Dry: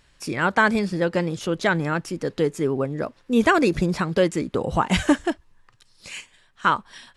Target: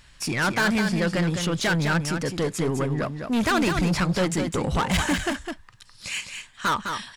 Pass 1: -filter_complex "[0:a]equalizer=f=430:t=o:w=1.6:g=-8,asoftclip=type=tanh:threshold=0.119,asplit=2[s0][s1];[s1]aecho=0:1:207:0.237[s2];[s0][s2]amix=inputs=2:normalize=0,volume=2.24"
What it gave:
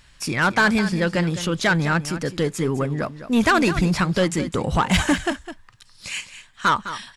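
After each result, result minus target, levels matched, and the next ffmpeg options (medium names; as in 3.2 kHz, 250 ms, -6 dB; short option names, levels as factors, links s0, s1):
echo-to-direct -6 dB; saturation: distortion -6 dB
-filter_complex "[0:a]equalizer=f=430:t=o:w=1.6:g=-8,asoftclip=type=tanh:threshold=0.119,asplit=2[s0][s1];[s1]aecho=0:1:207:0.473[s2];[s0][s2]amix=inputs=2:normalize=0,volume=2.24"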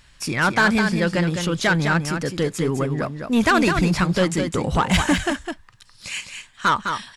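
saturation: distortion -6 dB
-filter_complex "[0:a]equalizer=f=430:t=o:w=1.6:g=-8,asoftclip=type=tanh:threshold=0.0473,asplit=2[s0][s1];[s1]aecho=0:1:207:0.473[s2];[s0][s2]amix=inputs=2:normalize=0,volume=2.24"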